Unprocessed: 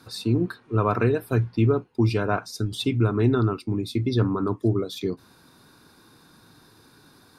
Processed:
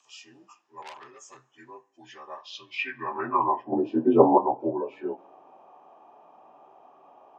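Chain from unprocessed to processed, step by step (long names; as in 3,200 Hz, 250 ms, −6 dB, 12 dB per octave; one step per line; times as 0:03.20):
partials spread apart or drawn together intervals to 85%
0:03.72–0:04.38: octave-band graphic EQ 125/250/500/1,000/2,000/4,000 Hz +5/+10/+10/+7/−12/+12 dB
flanger 0.43 Hz, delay 0.5 ms, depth 6.3 ms, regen −83%
high-pass filter 99 Hz
parametric band 810 Hz +15 dB 2.3 octaves
convolution reverb, pre-delay 3 ms, DRR 12 dB
band-pass filter sweep 6,900 Hz → 640 Hz, 0:02.27–0:03.66
0:00.82–0:01.46: saturating transformer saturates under 3,800 Hz
level +4.5 dB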